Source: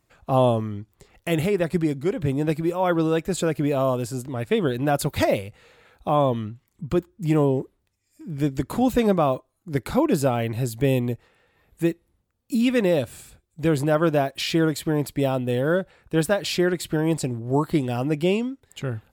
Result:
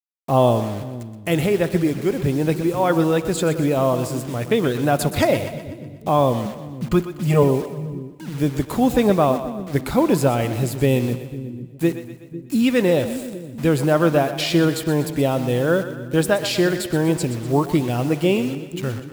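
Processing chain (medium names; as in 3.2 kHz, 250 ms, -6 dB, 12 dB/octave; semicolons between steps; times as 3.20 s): 6.45–7.43 s: comb 4.8 ms, depth 91%; bit crusher 7-bit; on a send: two-band feedback delay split 340 Hz, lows 500 ms, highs 123 ms, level -11.5 dB; on the sum: spring tank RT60 1.6 s, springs 41/52/58 ms, chirp 50 ms, DRR 18 dB; trim +3 dB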